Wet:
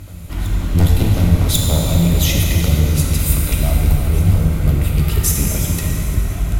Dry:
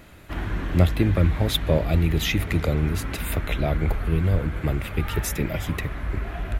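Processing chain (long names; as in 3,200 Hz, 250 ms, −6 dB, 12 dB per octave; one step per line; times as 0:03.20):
wavefolder on the positive side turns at −17 dBFS
bass and treble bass +9 dB, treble +15 dB
notch filter 1,700 Hz, Q 8.1
backwards echo 1,093 ms −21 dB
dense smooth reverb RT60 3.7 s, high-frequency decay 0.85×, DRR −1.5 dB
level −2.5 dB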